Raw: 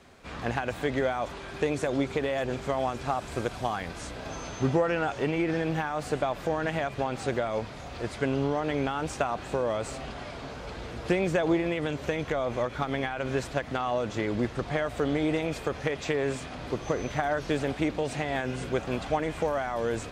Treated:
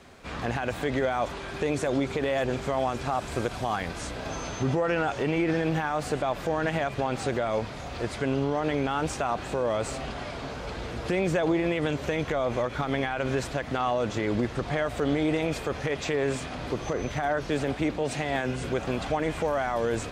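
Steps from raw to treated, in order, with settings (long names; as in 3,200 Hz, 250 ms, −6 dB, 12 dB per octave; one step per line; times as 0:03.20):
brickwall limiter −20.5 dBFS, peak gain reduction 8 dB
0:16.93–0:18.64: multiband upward and downward expander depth 70%
level +3.5 dB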